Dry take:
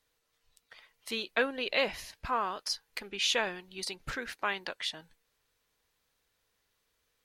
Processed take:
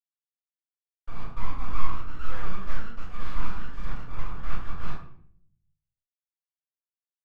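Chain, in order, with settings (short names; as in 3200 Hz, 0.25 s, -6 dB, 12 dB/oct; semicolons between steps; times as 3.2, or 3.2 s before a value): in parallel at -0.5 dB: compressor 5:1, threshold -45 dBFS, peak gain reduction 19.5 dB; on the sum: Schmitt trigger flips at -30 dBFS; band-pass 580 Hz, Q 5.6; full-wave rectifier; doubler 27 ms -13 dB; shoebox room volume 100 m³, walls mixed, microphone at 4.5 m; echoes that change speed 0.735 s, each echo +3 st, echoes 2, each echo -6 dB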